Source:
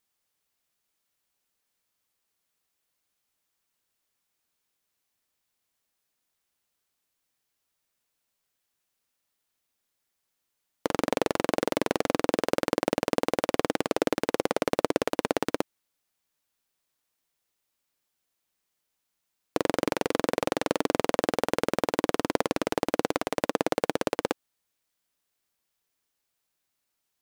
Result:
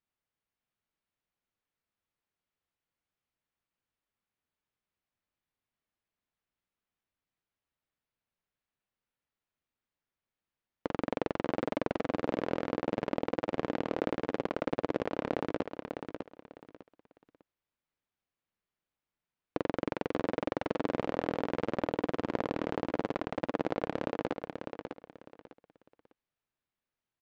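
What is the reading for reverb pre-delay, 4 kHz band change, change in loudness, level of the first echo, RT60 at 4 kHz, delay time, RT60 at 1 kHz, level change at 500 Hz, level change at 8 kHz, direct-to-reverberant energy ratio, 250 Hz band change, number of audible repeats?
no reverb, -12.5 dB, -6.0 dB, -6.5 dB, no reverb, 601 ms, no reverb, -6.0 dB, under -20 dB, no reverb, -4.5 dB, 3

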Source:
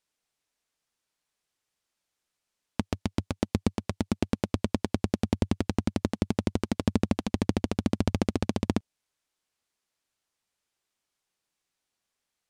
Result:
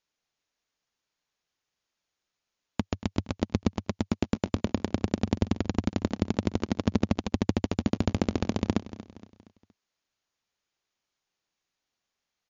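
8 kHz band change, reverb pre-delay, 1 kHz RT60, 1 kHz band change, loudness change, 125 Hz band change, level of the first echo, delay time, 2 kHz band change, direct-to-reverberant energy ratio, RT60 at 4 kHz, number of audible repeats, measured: -2.0 dB, no reverb, no reverb, 0.0 dB, 0.0 dB, 0.0 dB, -15.5 dB, 234 ms, 0.0 dB, no reverb, no reverb, 3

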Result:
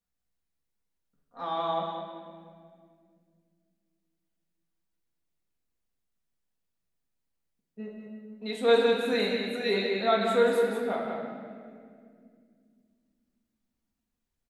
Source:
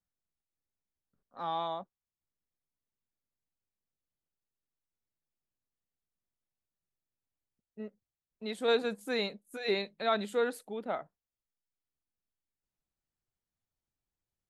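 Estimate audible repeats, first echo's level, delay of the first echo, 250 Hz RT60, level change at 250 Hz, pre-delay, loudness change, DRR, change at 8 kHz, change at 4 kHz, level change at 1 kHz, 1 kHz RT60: 1, -5.0 dB, 187 ms, 3.6 s, +7.5 dB, 4 ms, +6.5 dB, -4.0 dB, no reading, +5.0 dB, +5.5 dB, 1.8 s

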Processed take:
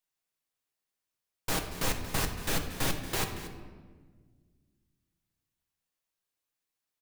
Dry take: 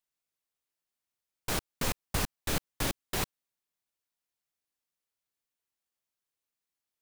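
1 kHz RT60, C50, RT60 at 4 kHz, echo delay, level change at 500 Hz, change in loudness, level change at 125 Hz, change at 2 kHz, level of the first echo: 1.3 s, 7.0 dB, 0.90 s, 231 ms, +1.5 dB, +1.0 dB, +1.5 dB, +2.0 dB, -14.5 dB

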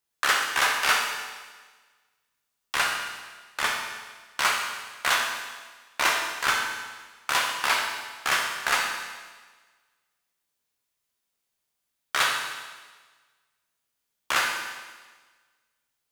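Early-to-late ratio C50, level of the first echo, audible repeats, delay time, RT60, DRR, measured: 3.5 dB, no echo, no echo, no echo, 1.4 s, 0.0 dB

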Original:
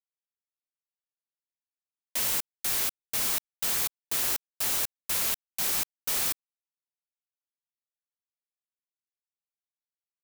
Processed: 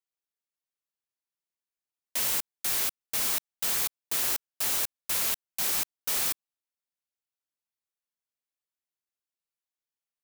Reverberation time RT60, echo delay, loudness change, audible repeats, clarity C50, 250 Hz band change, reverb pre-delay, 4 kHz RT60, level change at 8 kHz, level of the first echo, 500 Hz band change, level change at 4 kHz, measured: no reverb, no echo, 0.0 dB, no echo, no reverb, -1.0 dB, no reverb, no reverb, 0.0 dB, no echo, -0.5 dB, 0.0 dB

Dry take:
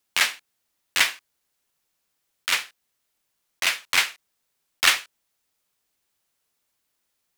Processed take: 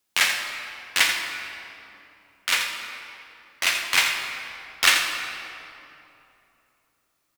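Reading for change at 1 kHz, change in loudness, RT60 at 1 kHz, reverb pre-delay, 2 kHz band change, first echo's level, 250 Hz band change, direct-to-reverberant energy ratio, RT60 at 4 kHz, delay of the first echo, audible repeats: +2.0 dB, 0.0 dB, 2.8 s, 9 ms, +2.0 dB, -8.0 dB, +3.0 dB, 2.0 dB, 1.8 s, 84 ms, 1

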